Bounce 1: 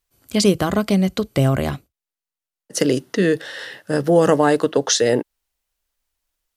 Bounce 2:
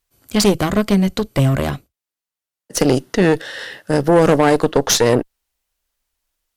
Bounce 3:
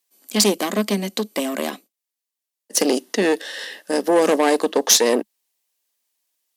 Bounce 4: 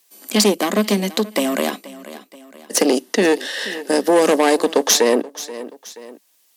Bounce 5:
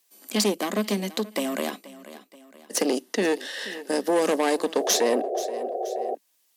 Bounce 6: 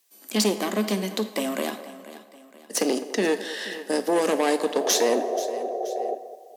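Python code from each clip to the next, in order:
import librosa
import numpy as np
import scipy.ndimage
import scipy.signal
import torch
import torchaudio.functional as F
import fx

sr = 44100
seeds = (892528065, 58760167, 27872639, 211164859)

y1 = fx.tube_stage(x, sr, drive_db=13.0, bias=0.75)
y1 = y1 * 10.0 ** (7.0 / 20.0)
y2 = scipy.signal.sosfilt(scipy.signal.ellip(4, 1.0, 40, 210.0, 'highpass', fs=sr, output='sos'), y1)
y2 = fx.high_shelf(y2, sr, hz=3000.0, db=8.5)
y2 = fx.notch(y2, sr, hz=1400.0, q=7.0)
y2 = y2 * 10.0 ** (-3.5 / 20.0)
y3 = fx.echo_feedback(y2, sr, ms=479, feedback_pct=26, wet_db=-20.5)
y3 = fx.band_squash(y3, sr, depth_pct=40)
y3 = y3 * 10.0 ** (3.0 / 20.0)
y4 = fx.spec_paint(y3, sr, seeds[0], shape='noise', start_s=4.8, length_s=1.35, low_hz=350.0, high_hz=780.0, level_db=-21.0)
y4 = y4 * 10.0 ** (-8.0 / 20.0)
y5 = fx.echo_banded(y4, sr, ms=206, feedback_pct=46, hz=710.0, wet_db=-13.0)
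y5 = fx.rev_double_slope(y5, sr, seeds[1], early_s=0.61, late_s=2.5, knee_db=-18, drr_db=10.0)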